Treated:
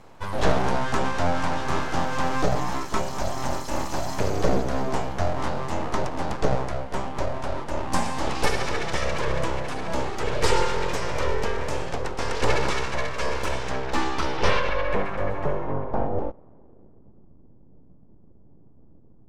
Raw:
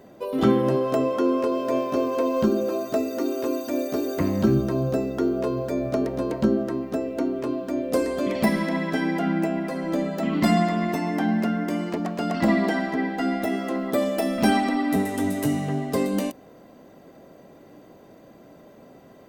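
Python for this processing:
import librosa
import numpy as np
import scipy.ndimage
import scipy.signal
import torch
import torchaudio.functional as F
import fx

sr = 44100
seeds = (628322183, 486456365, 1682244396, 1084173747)

y = np.abs(x)
y = fx.dynamic_eq(y, sr, hz=6100.0, q=1.4, threshold_db=-51.0, ratio=4.0, max_db=5)
y = fx.filter_sweep_lowpass(y, sr, from_hz=9200.0, to_hz=250.0, start_s=13.46, end_s=17.29, q=1.0)
y = y * librosa.db_to_amplitude(1.5)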